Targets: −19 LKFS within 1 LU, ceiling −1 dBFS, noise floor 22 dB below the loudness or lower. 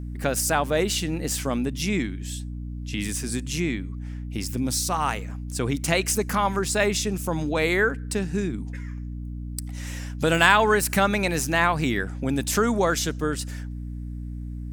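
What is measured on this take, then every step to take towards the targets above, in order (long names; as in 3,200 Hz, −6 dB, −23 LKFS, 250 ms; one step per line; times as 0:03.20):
mains hum 60 Hz; hum harmonics up to 300 Hz; level of the hum −30 dBFS; integrated loudness −24.5 LKFS; sample peak −2.0 dBFS; target loudness −19.0 LKFS
→ hum removal 60 Hz, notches 5
level +5.5 dB
brickwall limiter −1 dBFS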